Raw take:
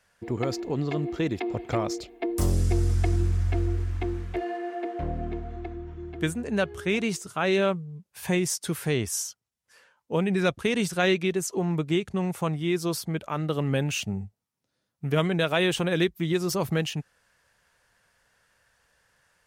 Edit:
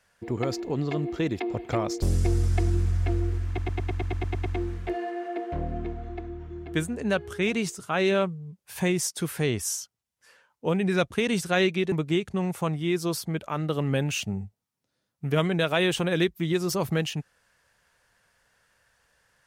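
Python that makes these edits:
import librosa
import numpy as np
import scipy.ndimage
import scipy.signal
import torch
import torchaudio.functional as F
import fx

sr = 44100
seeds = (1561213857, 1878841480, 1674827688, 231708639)

y = fx.edit(x, sr, fx.cut(start_s=2.02, length_s=0.46),
    fx.stutter(start_s=3.93, slice_s=0.11, count=10),
    fx.cut(start_s=11.39, length_s=0.33), tone=tone)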